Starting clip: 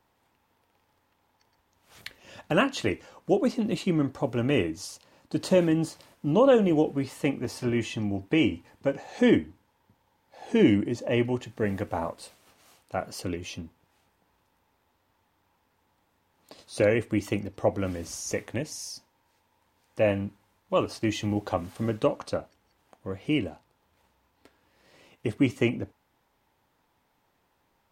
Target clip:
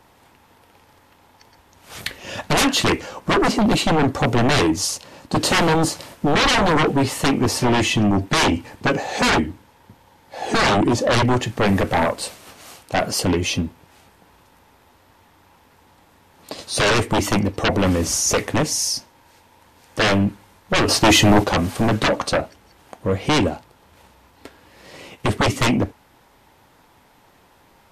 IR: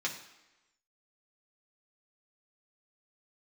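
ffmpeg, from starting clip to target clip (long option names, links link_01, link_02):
-filter_complex "[0:a]aeval=exprs='0.398*sin(PI/2*7.94*val(0)/0.398)':channel_layout=same,asettb=1/sr,asplit=3[link_01][link_02][link_03];[link_01]atrim=end=20.884[link_04];[link_02]atrim=start=20.88:end=21.44,asetpts=PTS-STARTPTS,afade=type=in:duration=0.004:curve=qsin,afade=type=out:start_time=0.556:duration=0.004:curve=qsin,acontrast=87[link_05];[link_03]atrim=start=21.436[link_06];[link_04][link_05]acrossfade=duration=0.004:curve1=hsin:curve2=qsin[link_07];[link_07][link_06]acrossfade=duration=0.004:curve1=qsin:curve2=hsin,volume=-5dB" -ar 32000 -c:a libvorbis -b:a 64k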